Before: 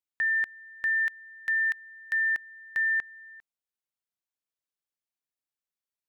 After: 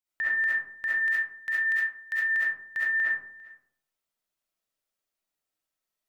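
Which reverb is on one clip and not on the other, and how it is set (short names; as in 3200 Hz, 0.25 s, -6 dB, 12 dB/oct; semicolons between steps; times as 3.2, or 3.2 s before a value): digital reverb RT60 0.69 s, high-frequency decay 0.35×, pre-delay 25 ms, DRR -9.5 dB; gain -2.5 dB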